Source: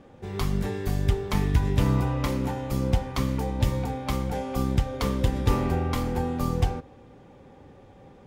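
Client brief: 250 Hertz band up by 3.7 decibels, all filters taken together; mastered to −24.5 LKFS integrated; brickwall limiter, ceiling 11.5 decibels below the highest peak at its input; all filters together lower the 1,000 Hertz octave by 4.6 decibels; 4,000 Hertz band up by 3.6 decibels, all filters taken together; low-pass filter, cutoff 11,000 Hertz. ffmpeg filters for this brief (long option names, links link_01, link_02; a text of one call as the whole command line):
ffmpeg -i in.wav -af "lowpass=11000,equalizer=frequency=250:width_type=o:gain=5,equalizer=frequency=1000:width_type=o:gain=-6.5,equalizer=frequency=4000:width_type=o:gain=5,volume=6.5dB,alimiter=limit=-14.5dB:level=0:latency=1" out.wav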